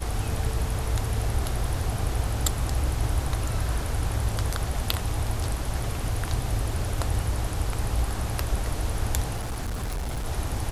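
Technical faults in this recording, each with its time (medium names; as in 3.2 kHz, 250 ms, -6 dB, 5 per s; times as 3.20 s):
9.36–10.27 s: clipped -26.5 dBFS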